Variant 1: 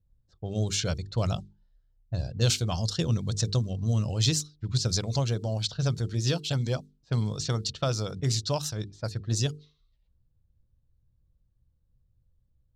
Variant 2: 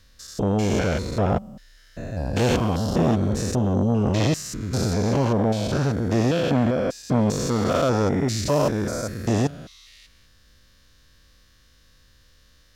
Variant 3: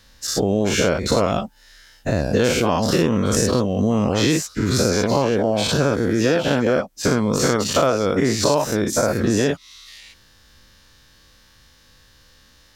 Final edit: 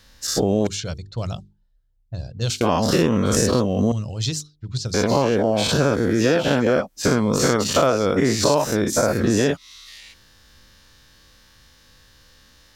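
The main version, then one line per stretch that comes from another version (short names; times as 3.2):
3
0.67–2.61 from 1
3.92–4.94 from 1
not used: 2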